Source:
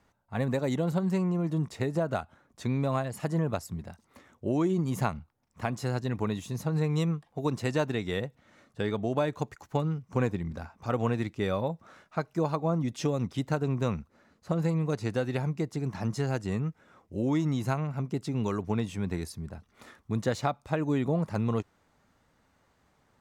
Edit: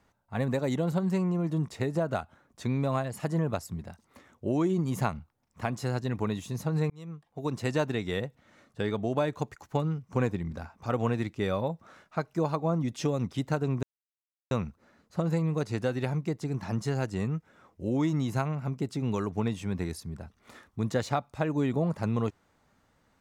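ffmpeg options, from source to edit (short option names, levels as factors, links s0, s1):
-filter_complex "[0:a]asplit=3[s0][s1][s2];[s0]atrim=end=6.9,asetpts=PTS-STARTPTS,afade=t=out:st=6.896:d=0.004:c=hsin[s3];[s1]atrim=start=6.9:end=13.83,asetpts=PTS-STARTPTS,afade=t=in:d=0.78,afade=t=out:st=6.926:d=0.004:c=hsin,apad=pad_dur=0.68[s4];[s2]atrim=start=13.83,asetpts=PTS-STARTPTS,afade=t=in:d=0.004:c=hsin[s5];[s3][s4][s5]concat=n=3:v=0:a=1"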